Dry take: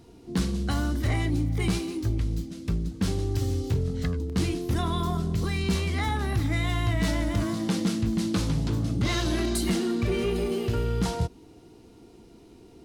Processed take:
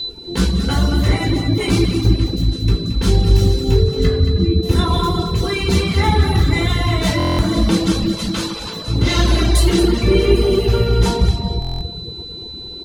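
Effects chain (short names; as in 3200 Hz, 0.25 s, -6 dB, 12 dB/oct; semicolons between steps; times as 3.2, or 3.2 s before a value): 4.19–4.63 spectral contrast raised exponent 1.8; 8.03–8.88 HPF 720 Hz 12 dB/oct; feedback echo 0.225 s, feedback 22%, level -8.5 dB; whine 4000 Hz -33 dBFS; reverb RT60 2.0 s, pre-delay 4 ms, DRR -3.5 dB; reverb removal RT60 0.73 s; stuck buffer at 7.18/11.6, samples 1024, times 8; gain +3.5 dB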